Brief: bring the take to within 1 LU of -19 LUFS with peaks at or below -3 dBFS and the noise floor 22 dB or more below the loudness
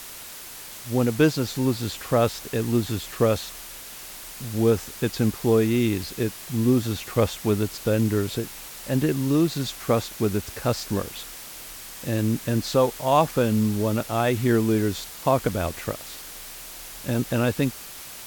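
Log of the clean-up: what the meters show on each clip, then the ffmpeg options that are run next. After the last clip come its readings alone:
noise floor -40 dBFS; noise floor target -47 dBFS; loudness -24.5 LUFS; peak level -6.0 dBFS; loudness target -19.0 LUFS
-> -af "afftdn=nr=7:nf=-40"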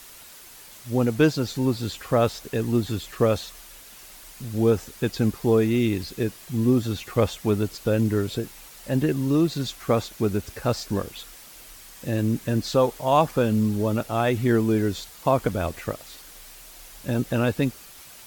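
noise floor -46 dBFS; noise floor target -47 dBFS
-> -af "afftdn=nr=6:nf=-46"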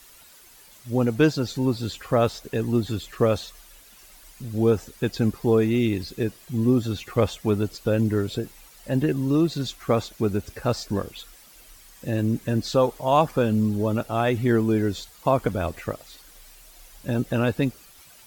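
noise floor -51 dBFS; loudness -24.5 LUFS; peak level -6.5 dBFS; loudness target -19.0 LUFS
-> -af "volume=1.88,alimiter=limit=0.708:level=0:latency=1"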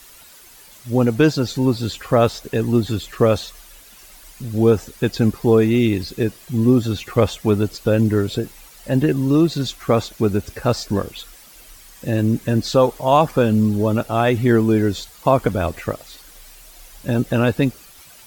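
loudness -19.0 LUFS; peak level -3.0 dBFS; noise floor -45 dBFS

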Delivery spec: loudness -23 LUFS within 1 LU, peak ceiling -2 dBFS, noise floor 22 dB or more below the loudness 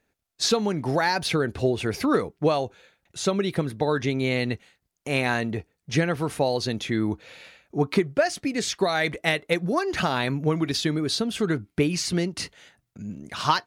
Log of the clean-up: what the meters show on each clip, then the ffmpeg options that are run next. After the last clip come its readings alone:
loudness -25.5 LUFS; peak level -9.5 dBFS; loudness target -23.0 LUFS
-> -af "volume=1.33"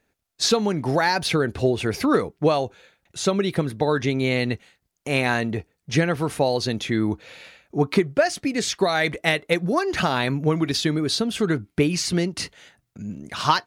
loudness -23.0 LUFS; peak level -7.0 dBFS; noise floor -75 dBFS

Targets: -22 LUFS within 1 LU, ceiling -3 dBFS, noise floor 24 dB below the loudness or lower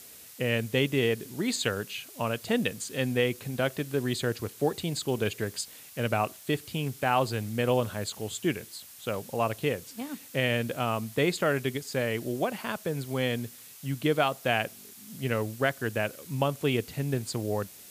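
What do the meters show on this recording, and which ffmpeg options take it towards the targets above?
noise floor -49 dBFS; noise floor target -54 dBFS; loudness -30.0 LUFS; peak level -11.5 dBFS; loudness target -22.0 LUFS
-> -af "afftdn=nr=6:nf=-49"
-af "volume=2.51"

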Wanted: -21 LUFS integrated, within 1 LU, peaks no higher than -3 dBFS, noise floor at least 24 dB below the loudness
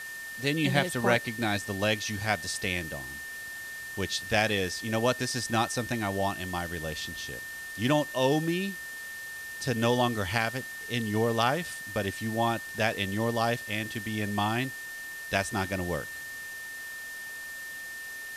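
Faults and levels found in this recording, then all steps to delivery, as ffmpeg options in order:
steady tone 1.8 kHz; tone level -38 dBFS; noise floor -40 dBFS; noise floor target -54 dBFS; loudness -30.0 LUFS; peak level -10.0 dBFS; loudness target -21.0 LUFS
-> -af "bandreject=f=1800:w=30"
-af "afftdn=nr=14:nf=-40"
-af "volume=2.82,alimiter=limit=0.708:level=0:latency=1"

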